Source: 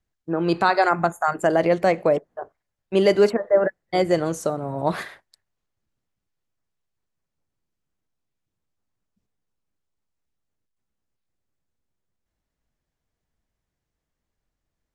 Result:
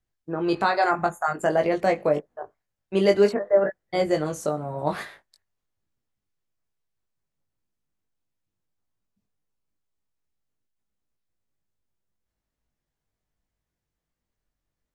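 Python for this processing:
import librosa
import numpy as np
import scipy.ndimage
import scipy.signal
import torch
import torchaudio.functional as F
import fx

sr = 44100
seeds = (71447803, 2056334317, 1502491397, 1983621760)

y = fx.doubler(x, sr, ms=20.0, db=-4.5)
y = y * librosa.db_to_amplitude(-4.0)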